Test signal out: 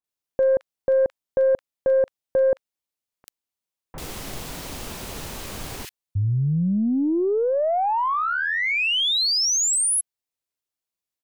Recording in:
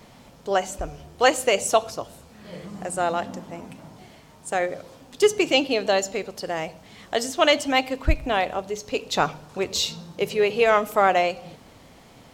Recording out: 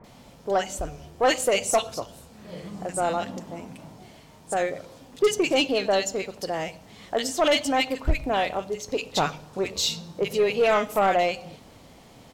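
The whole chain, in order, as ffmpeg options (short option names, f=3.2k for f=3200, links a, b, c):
-filter_complex "[0:a]acrossover=split=1600[a][b];[b]adelay=40[c];[a][c]amix=inputs=2:normalize=0,aeval=exprs='0.531*(cos(1*acos(clip(val(0)/0.531,-1,1)))-cos(1*PI/2))+0.075*(cos(5*acos(clip(val(0)/0.531,-1,1)))-cos(5*PI/2))+0.00668*(cos(6*acos(clip(val(0)/0.531,-1,1)))-cos(6*PI/2))+0.0106*(cos(7*acos(clip(val(0)/0.531,-1,1)))-cos(7*PI/2))':c=same,volume=-4dB"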